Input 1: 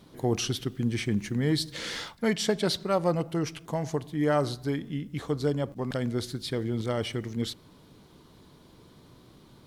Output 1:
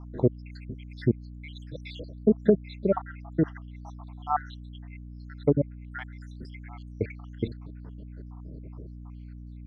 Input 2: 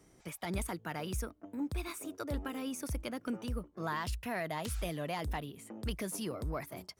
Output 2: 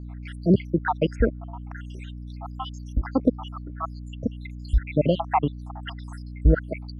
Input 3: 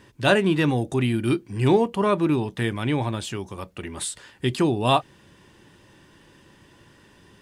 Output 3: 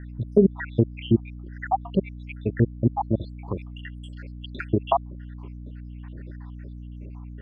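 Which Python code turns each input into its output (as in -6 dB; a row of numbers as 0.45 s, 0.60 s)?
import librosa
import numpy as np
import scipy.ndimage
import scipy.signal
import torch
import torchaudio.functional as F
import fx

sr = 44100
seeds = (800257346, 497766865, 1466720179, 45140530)

y = fx.spec_dropout(x, sr, seeds[0], share_pct=84)
y = fx.env_lowpass_down(y, sr, base_hz=530.0, full_db=-24.0)
y = fx.add_hum(y, sr, base_hz=60, snr_db=11)
y = scipy.signal.sosfilt(scipy.signal.butter(2, 1800.0, 'lowpass', fs=sr, output='sos'), y)
y = librosa.util.normalize(y) * 10.0 ** (-6 / 20.0)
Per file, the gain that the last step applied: +8.0 dB, +21.5 dB, +8.5 dB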